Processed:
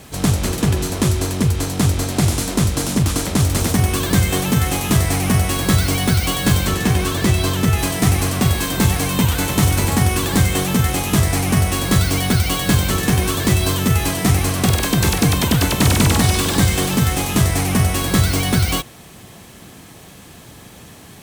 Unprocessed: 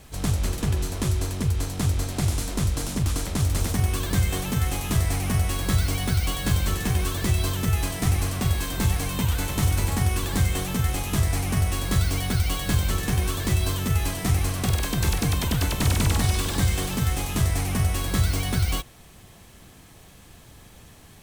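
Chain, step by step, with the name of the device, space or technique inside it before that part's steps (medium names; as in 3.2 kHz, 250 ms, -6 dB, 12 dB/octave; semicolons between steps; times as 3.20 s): filter by subtraction (in parallel: low-pass 200 Hz 12 dB/octave + polarity flip); 6.67–7.79 s: on the sum: treble shelf 8 kHz -5 dB; trim +9 dB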